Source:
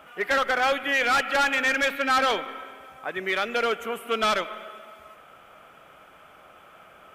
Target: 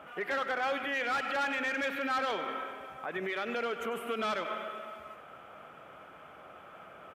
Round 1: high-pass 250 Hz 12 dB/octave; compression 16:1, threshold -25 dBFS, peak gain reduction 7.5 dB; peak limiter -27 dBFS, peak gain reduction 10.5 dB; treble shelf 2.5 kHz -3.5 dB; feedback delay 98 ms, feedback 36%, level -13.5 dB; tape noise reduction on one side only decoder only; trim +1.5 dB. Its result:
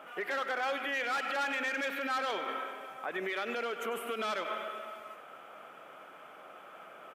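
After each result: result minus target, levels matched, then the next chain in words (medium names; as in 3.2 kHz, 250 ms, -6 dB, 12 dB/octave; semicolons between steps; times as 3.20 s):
125 Hz band -5.5 dB; 8 kHz band +3.5 dB
high-pass 74 Hz 12 dB/octave; compression 16:1, threshold -25 dBFS, peak gain reduction 6.5 dB; peak limiter -27 dBFS, peak gain reduction 9 dB; treble shelf 2.5 kHz -3.5 dB; feedback delay 98 ms, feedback 36%, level -13.5 dB; tape noise reduction on one side only decoder only; trim +1.5 dB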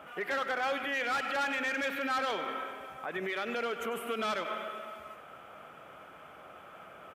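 8 kHz band +3.0 dB
high-pass 74 Hz 12 dB/octave; compression 16:1, threshold -25 dBFS, peak gain reduction 6.5 dB; treble shelf 5.3 kHz -5.5 dB; peak limiter -27 dBFS, peak gain reduction 8 dB; treble shelf 2.5 kHz -3.5 dB; feedback delay 98 ms, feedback 36%, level -13.5 dB; tape noise reduction on one side only decoder only; trim +1.5 dB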